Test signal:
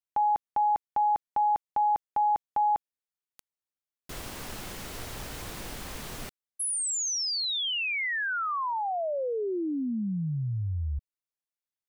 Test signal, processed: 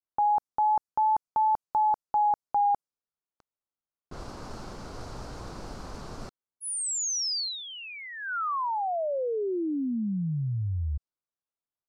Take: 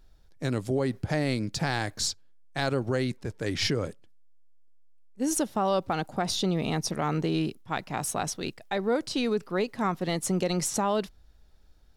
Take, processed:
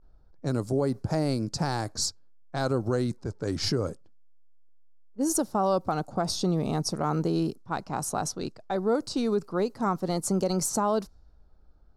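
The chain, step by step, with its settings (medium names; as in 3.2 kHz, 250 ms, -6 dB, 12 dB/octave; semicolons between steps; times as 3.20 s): wow and flutter 0.3 Hz 63 cents; level-controlled noise filter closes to 2.3 kHz, open at -25 dBFS; high-order bell 2.5 kHz -12 dB 1.3 oct; trim +1 dB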